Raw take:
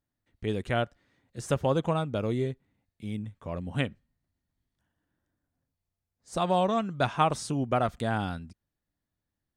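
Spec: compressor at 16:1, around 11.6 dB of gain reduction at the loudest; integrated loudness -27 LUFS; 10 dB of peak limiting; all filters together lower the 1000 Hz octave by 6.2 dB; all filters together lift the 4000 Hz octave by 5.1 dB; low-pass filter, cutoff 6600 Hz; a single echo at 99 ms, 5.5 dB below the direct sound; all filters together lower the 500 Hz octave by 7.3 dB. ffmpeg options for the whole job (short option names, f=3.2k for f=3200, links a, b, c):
-af "lowpass=6.6k,equalizer=f=500:t=o:g=-7.5,equalizer=f=1k:t=o:g=-6,equalizer=f=4k:t=o:g=7.5,acompressor=threshold=-35dB:ratio=16,alimiter=level_in=8.5dB:limit=-24dB:level=0:latency=1,volume=-8.5dB,aecho=1:1:99:0.531,volume=16dB"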